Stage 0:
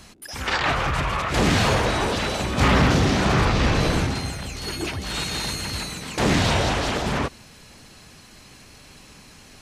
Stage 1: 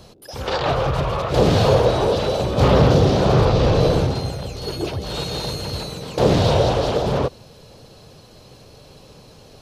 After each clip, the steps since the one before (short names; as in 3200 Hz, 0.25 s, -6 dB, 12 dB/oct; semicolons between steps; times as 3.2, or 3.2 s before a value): graphic EQ 125/250/500/2000/4000/8000 Hz +7/-4/+12/-10/+4/-8 dB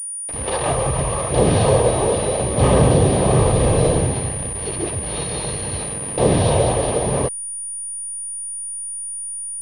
level-crossing sampler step -27 dBFS; Butterworth band-stop 1400 Hz, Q 5.8; pulse-width modulation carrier 9500 Hz